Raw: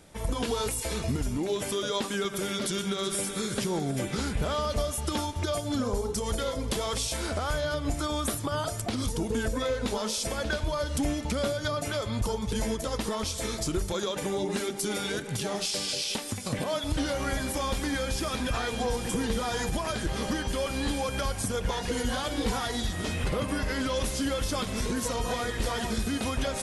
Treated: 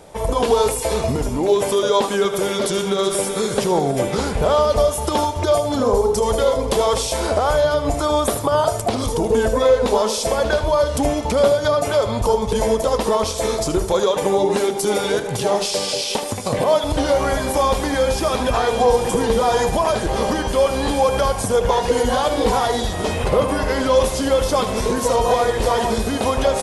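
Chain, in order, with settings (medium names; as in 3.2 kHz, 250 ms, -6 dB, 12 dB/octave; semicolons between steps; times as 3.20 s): high-order bell 660 Hz +9 dB; delay 77 ms -11.5 dB; trim +6.5 dB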